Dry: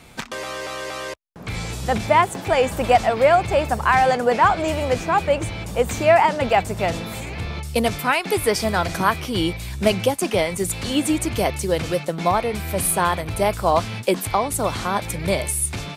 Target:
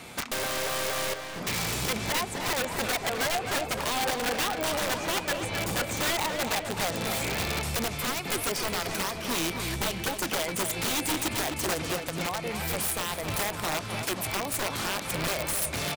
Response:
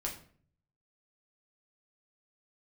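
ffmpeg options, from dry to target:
-filter_complex "[0:a]highpass=f=200:p=1,acompressor=threshold=-29dB:ratio=12,asplit=2[a][b];[b]aecho=0:1:538|1076|1614:0.178|0.0605|0.0206[c];[a][c]amix=inputs=2:normalize=0,asplit=3[d][e][f];[d]afade=t=out:st=11.9:d=0.02[g];[e]adynamicequalizer=threshold=0.00708:dfrequency=520:dqfactor=0.76:tfrequency=520:tqfactor=0.76:attack=5:release=100:ratio=0.375:range=2.5:mode=cutabove:tftype=bell,afade=t=in:st=11.9:d=0.02,afade=t=out:st=13.02:d=0.02[h];[f]afade=t=in:st=13.02:d=0.02[i];[g][h][i]amix=inputs=3:normalize=0,aeval=exprs='(mod(22.4*val(0)+1,2)-1)/22.4':c=same,asplit=2[j][k];[k]adelay=259,lowpass=f=4k:p=1,volume=-7dB,asplit=2[l][m];[m]adelay=259,lowpass=f=4k:p=1,volume=0.42,asplit=2[n][o];[o]adelay=259,lowpass=f=4k:p=1,volume=0.42,asplit=2[p][q];[q]adelay=259,lowpass=f=4k:p=1,volume=0.42,asplit=2[r][s];[s]adelay=259,lowpass=f=4k:p=1,volume=0.42[t];[l][n][p][r][t]amix=inputs=5:normalize=0[u];[j][u]amix=inputs=2:normalize=0,volume=4dB"

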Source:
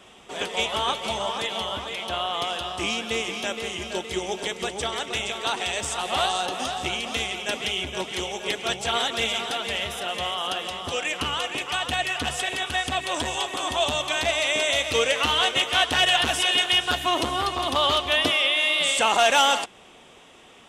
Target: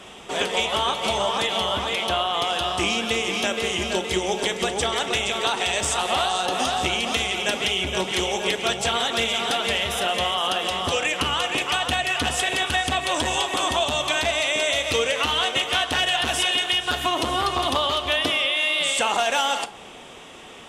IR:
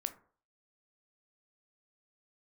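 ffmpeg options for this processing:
-filter_complex "[0:a]acompressor=threshold=-27dB:ratio=6,asplit=2[a][b];[1:a]atrim=start_sample=2205,asetrate=32634,aresample=44100[c];[b][c]afir=irnorm=-1:irlink=0,volume=5.5dB[d];[a][d]amix=inputs=2:normalize=0,volume=-2dB"

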